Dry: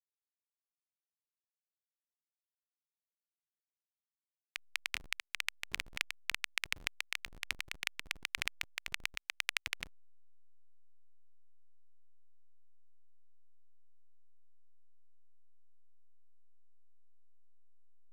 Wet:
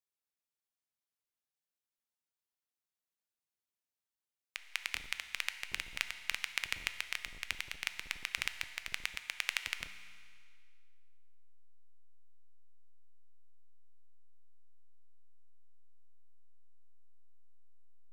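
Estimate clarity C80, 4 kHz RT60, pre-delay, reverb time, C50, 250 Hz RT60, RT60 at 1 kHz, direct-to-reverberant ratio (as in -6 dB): 11.5 dB, 2.0 s, 7 ms, 2.0 s, 10.5 dB, 2.0 s, 2.0 s, 9.0 dB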